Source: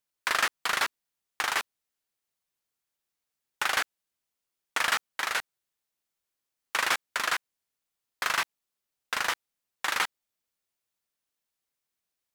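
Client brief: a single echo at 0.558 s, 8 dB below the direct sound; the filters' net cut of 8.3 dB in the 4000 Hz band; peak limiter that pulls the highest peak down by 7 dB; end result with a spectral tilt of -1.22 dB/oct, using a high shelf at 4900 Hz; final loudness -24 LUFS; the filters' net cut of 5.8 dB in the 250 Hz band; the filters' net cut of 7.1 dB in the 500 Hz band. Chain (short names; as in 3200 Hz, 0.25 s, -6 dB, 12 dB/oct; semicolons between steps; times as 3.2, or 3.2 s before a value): bell 250 Hz -4.5 dB; bell 500 Hz -8.5 dB; bell 4000 Hz -8 dB; high shelf 4900 Hz -7 dB; limiter -22 dBFS; echo 0.558 s -8 dB; gain +13.5 dB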